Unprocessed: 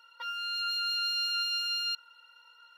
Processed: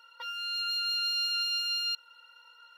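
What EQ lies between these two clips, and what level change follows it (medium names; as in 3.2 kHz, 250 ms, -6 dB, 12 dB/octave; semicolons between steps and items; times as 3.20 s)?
peaking EQ 490 Hz +2.5 dB 0.73 oct; dynamic bell 1.3 kHz, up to -5 dB, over -49 dBFS, Q 1.2; +1.5 dB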